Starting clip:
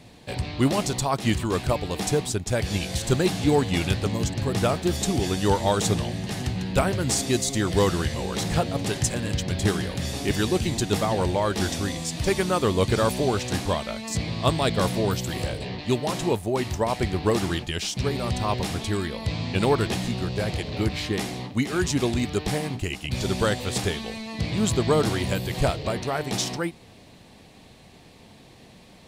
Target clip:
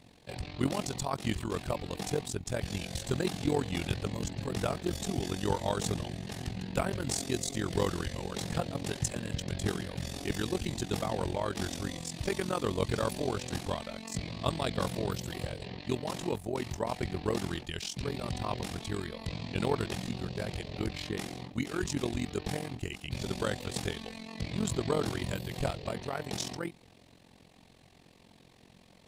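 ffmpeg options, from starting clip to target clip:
-af "tremolo=f=44:d=0.857,volume=-5.5dB"

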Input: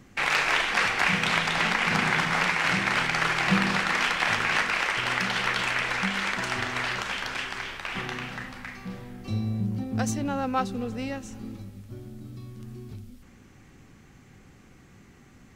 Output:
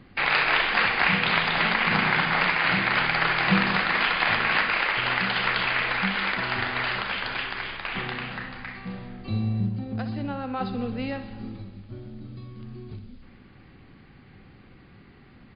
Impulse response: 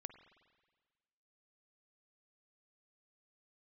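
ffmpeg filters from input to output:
-filter_complex "[0:a]asplit=3[a][b][c];[a]afade=t=out:st=9.68:d=0.02[d];[b]acompressor=threshold=-30dB:ratio=4,afade=t=in:st=9.68:d=0.02,afade=t=out:st=10.6:d=0.02[e];[c]afade=t=in:st=10.6:d=0.02[f];[d][e][f]amix=inputs=3:normalize=0,aecho=1:1:63|126|189|252|315|378:0.266|0.152|0.0864|0.0493|0.0281|0.016,volume=2dB" -ar 11025 -c:a libmp3lame -b:a 64k

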